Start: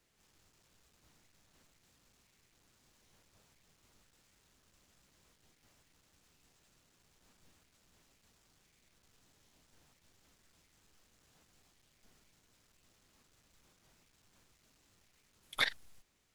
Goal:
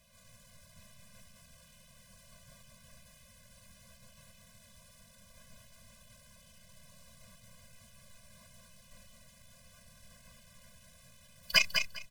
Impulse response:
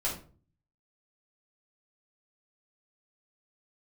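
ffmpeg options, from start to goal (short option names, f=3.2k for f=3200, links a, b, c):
-filter_complex "[0:a]asetrate=59535,aresample=44100,asplit=2[a][b];[b]alimiter=level_in=0.5dB:limit=-24dB:level=0:latency=1:release=39,volume=-0.5dB,volume=-1dB[c];[a][c]amix=inputs=2:normalize=0,aecho=1:1:201|402|603:0.501|0.0902|0.0162,afftfilt=real='re*eq(mod(floor(b*sr/1024/240),2),0)':imag='im*eq(mod(floor(b*sr/1024/240),2),0)':win_size=1024:overlap=0.75,volume=7.5dB"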